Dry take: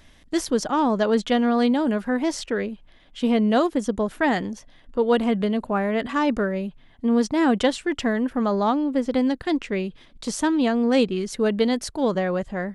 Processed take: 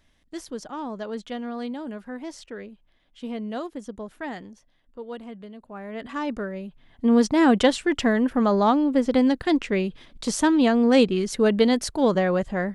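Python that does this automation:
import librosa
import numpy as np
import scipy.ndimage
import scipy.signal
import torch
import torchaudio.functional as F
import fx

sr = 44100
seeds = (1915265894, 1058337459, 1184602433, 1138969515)

y = fx.gain(x, sr, db=fx.line((4.21, -12.0), (5.59, -19.0), (6.12, -7.0), (6.66, -7.0), (7.07, 2.0)))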